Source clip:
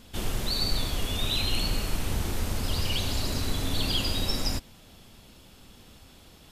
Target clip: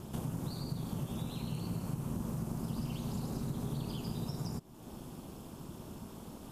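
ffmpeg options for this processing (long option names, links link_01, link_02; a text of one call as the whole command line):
ffmpeg -i in.wav -af "acompressor=threshold=-43dB:ratio=4,aeval=exprs='val(0)*sin(2*PI*140*n/s)':channel_layout=same,equalizer=frequency=250:width_type=o:width=1:gain=7,equalizer=frequency=1000:width_type=o:width=1:gain=6,equalizer=frequency=2000:width_type=o:width=1:gain=-9,equalizer=frequency=4000:width_type=o:width=1:gain=-9,volume=5.5dB" out.wav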